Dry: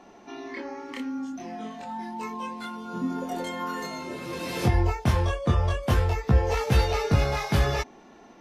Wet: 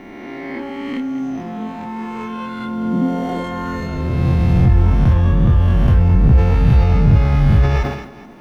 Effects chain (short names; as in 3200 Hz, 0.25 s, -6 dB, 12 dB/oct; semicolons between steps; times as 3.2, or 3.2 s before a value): spectral swells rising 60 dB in 2.07 s; tone controls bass +12 dB, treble -13 dB; in parallel at -3 dB: negative-ratio compressor -17 dBFS, ratio -1; on the sum: requantised 10-bit, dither none; on a send: thinning echo 0.215 s, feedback 53%, high-pass 210 Hz, level -13 dB; on the sum: sustainer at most 76 dB/s; gain -5 dB